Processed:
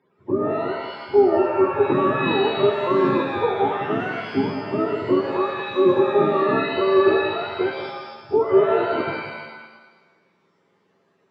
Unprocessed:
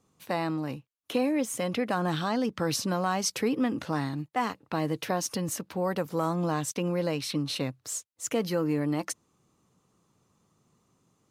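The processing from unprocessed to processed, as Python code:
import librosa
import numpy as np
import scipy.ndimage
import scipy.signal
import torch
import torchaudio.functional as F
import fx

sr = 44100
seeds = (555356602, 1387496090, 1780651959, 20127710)

y = fx.octave_mirror(x, sr, pivot_hz=450.0)
y = fx.cabinet(y, sr, low_hz=210.0, low_slope=12, high_hz=4400.0, hz=(220.0, 390.0, 720.0, 1400.0, 2600.0), db=(-4, 10, -8, -5, -3))
y = y + 10.0 ** (-10.5 / 20.0) * np.pad(y, (int(181 * sr / 1000.0), 0))[:len(y)]
y = fx.rev_shimmer(y, sr, seeds[0], rt60_s=1.1, semitones=7, shimmer_db=-2, drr_db=5.5)
y = F.gain(torch.from_numpy(y), 8.0).numpy()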